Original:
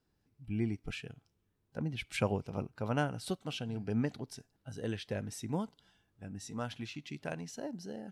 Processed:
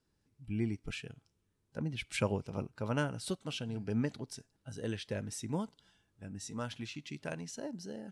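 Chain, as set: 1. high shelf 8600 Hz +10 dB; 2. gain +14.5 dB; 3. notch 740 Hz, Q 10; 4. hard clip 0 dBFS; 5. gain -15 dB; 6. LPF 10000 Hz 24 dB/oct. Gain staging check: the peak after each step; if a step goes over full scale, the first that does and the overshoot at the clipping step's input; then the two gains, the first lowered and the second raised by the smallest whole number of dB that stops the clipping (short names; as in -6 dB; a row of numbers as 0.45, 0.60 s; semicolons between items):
-17.0, -2.5, -3.0, -3.0, -18.0, -18.0 dBFS; no overload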